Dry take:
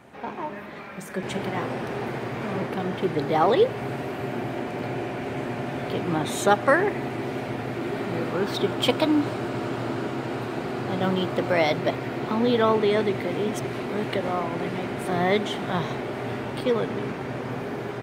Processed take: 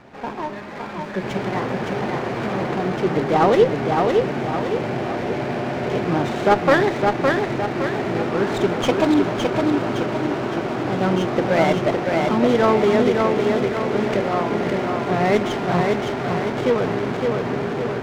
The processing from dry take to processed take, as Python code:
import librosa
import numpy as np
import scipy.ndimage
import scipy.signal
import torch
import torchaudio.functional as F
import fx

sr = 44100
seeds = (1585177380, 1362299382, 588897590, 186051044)

y = fx.cvsd(x, sr, bps=32000)
y = scipy.signal.sosfilt(scipy.signal.butter(2, 3500.0, 'lowpass', fs=sr, output='sos'), y)
y = fx.echo_feedback(y, sr, ms=562, feedback_pct=48, wet_db=-3.5)
y = fx.running_max(y, sr, window=5)
y = y * 10.0 ** (4.5 / 20.0)